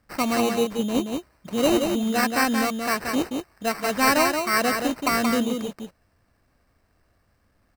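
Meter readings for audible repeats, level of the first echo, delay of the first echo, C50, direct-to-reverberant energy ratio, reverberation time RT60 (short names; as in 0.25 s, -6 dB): 1, -5.0 dB, 0.177 s, none, none, none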